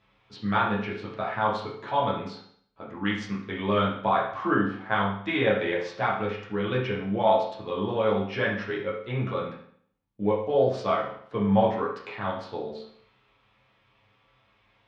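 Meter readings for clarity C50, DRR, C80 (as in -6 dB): 4.0 dB, -6.5 dB, 8.0 dB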